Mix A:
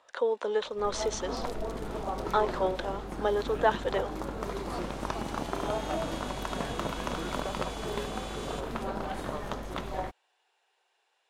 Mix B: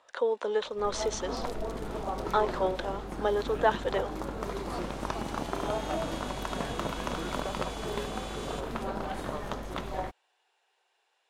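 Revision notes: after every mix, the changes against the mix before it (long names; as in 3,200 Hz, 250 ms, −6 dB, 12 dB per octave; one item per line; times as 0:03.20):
nothing changed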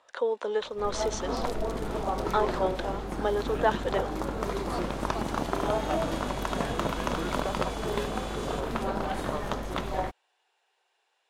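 second sound +4.0 dB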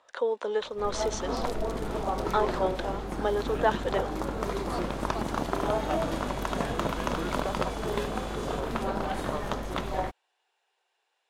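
first sound: send −11.5 dB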